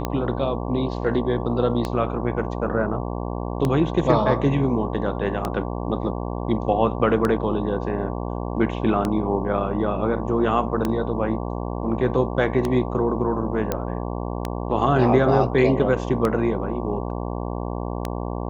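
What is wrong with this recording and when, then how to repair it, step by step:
buzz 60 Hz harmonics 19 -28 dBFS
tick 33 1/3 rpm -10 dBFS
13.72 pop -9 dBFS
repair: de-click; de-hum 60 Hz, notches 19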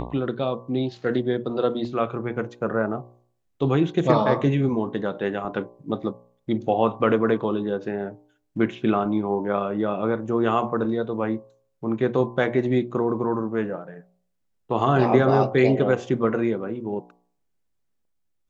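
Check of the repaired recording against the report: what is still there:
none

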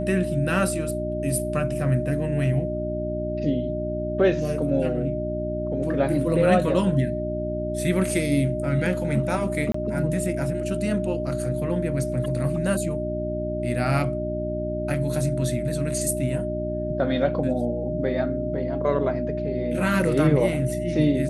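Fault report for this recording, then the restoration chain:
hum 60 Hz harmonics 6 -30 dBFS
tone 610 Hz -28 dBFS
9.72–9.74 gap 24 ms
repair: de-hum 60 Hz, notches 6; notch 610 Hz, Q 30; interpolate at 9.72, 24 ms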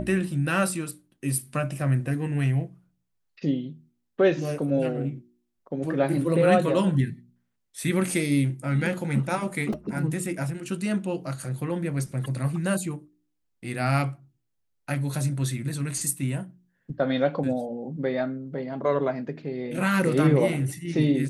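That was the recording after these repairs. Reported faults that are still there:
none

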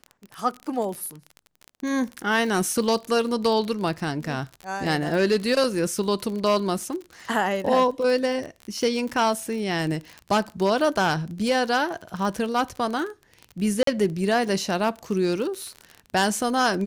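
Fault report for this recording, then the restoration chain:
crackle 33/s -29 dBFS
13.83–13.87 gap 43 ms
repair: de-click; interpolate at 13.83, 43 ms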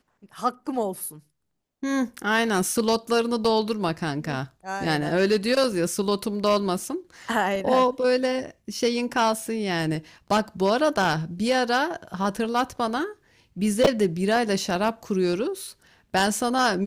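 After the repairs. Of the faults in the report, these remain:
none

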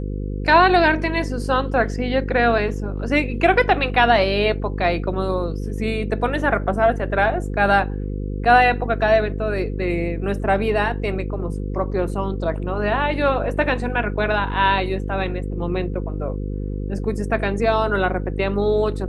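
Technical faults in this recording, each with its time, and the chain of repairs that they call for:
buzz 50 Hz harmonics 10 -26 dBFS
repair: de-hum 50 Hz, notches 10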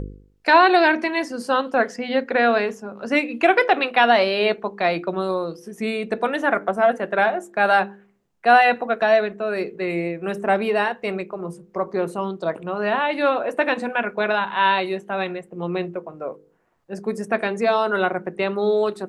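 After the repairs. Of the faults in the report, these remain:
none

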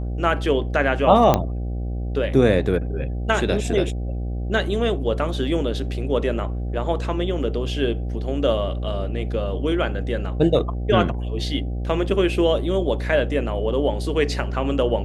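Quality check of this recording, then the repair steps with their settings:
buzz 60 Hz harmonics 13 -26 dBFS
1.34 pop -4 dBFS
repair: de-click; de-hum 60 Hz, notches 13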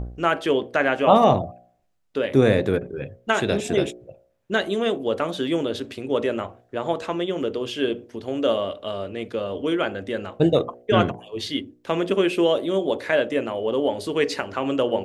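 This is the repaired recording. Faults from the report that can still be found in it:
none

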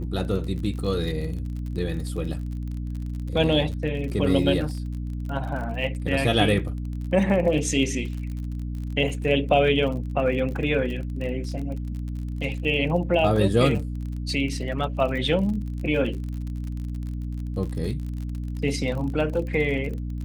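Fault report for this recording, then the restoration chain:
crackle 43/s -32 dBFS
hum 60 Hz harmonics 5 -30 dBFS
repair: de-click; de-hum 60 Hz, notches 5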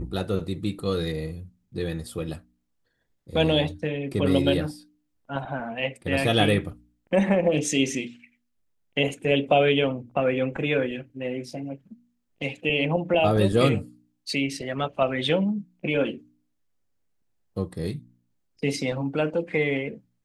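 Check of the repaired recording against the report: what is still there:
none

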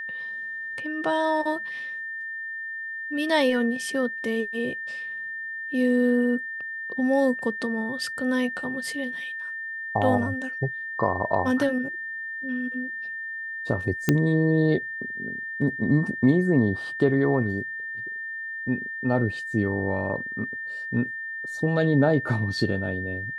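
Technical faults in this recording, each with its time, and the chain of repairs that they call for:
tone 1800 Hz -31 dBFS
14.09 pop -6 dBFS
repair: de-click; notch 1800 Hz, Q 30

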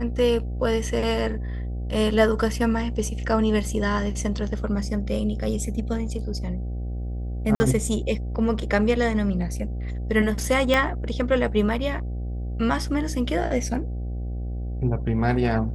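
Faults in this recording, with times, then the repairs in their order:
buzz 60 Hz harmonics 13 -29 dBFS
7.55–7.6 gap 50 ms
10.74 pop -8 dBFS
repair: de-click; de-hum 60 Hz, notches 13; interpolate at 7.55, 50 ms

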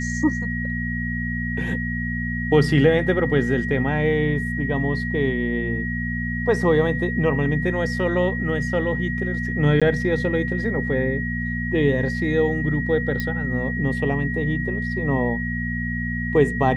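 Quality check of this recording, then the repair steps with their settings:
hum 60 Hz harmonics 4 -27 dBFS
tone 1900 Hz -28 dBFS
9.8–9.82 gap 16 ms
13.2 pop -12 dBFS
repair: de-click; notch 1900 Hz, Q 30; de-hum 60 Hz, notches 4; interpolate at 9.8, 16 ms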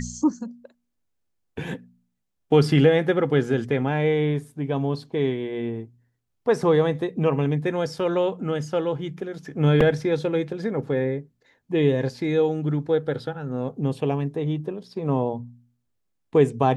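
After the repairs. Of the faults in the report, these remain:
none

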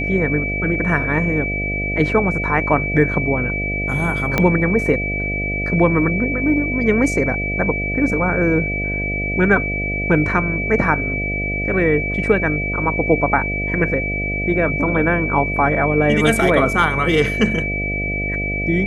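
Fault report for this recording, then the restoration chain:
buzz 50 Hz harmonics 14 -25 dBFS
tone 2300 Hz -22 dBFS
4.38 pop -3 dBFS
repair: de-click; de-hum 50 Hz, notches 14; notch 2300 Hz, Q 30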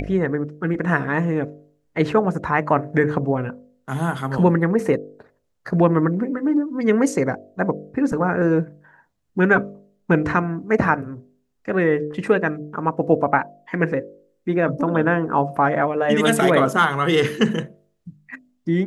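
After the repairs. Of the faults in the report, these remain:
4.38 pop

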